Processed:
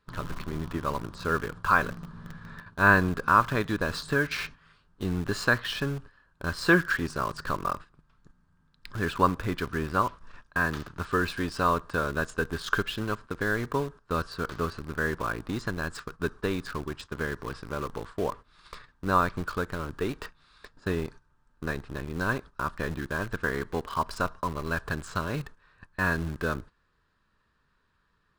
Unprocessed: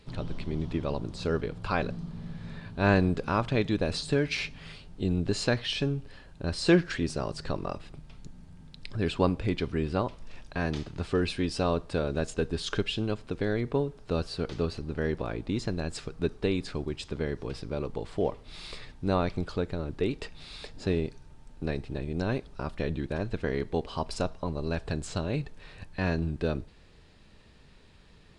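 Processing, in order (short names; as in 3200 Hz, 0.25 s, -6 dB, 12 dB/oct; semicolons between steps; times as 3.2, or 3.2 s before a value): gate -40 dBFS, range -13 dB; band shelf 1300 Hz +13.5 dB 1 oct; in parallel at -9 dB: bit-crush 5-bit; on the sum: gain -4.5 dB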